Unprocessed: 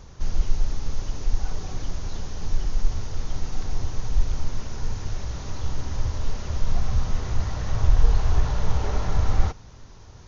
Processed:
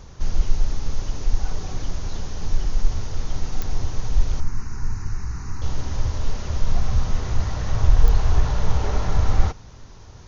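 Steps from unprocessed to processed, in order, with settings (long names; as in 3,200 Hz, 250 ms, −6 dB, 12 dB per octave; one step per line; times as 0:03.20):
0:04.40–0:05.62: phaser with its sweep stopped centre 1,400 Hz, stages 4
digital clicks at 0:03.62/0:08.08, −15 dBFS
level +2.5 dB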